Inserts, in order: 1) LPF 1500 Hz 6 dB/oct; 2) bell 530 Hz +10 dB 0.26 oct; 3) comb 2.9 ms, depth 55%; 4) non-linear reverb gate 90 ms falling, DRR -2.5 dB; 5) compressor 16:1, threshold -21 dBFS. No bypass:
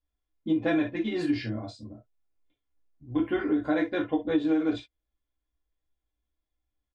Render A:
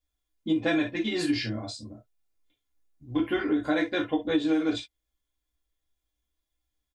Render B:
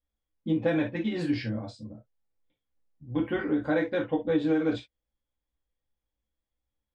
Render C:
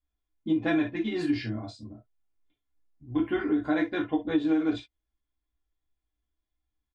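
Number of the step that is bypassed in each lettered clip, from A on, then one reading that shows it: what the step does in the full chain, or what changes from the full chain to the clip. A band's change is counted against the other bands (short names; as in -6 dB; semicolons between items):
1, 4 kHz band +8.0 dB; 3, 125 Hz band +5.0 dB; 2, 500 Hz band -2.0 dB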